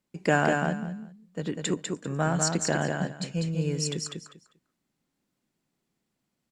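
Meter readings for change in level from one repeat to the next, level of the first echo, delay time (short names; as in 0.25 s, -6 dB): -14.0 dB, -4.0 dB, 0.198 s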